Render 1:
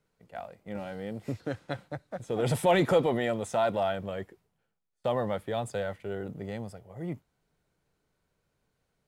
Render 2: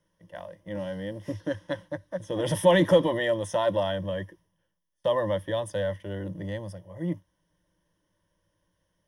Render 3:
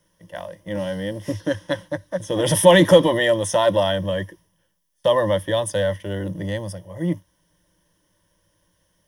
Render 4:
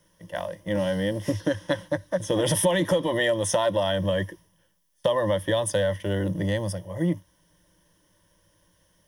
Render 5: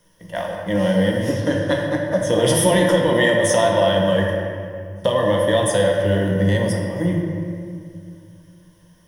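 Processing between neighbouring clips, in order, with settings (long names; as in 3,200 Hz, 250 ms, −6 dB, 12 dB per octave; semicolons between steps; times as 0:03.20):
EQ curve with evenly spaced ripples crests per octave 1.2, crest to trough 15 dB
high-shelf EQ 4,000 Hz +8.5 dB; level +7 dB
downward compressor 6 to 1, threshold −22 dBFS, peak gain reduction 14.5 dB; level +2 dB
convolution reverb RT60 2.3 s, pre-delay 4 ms, DRR −1.5 dB; level +3.5 dB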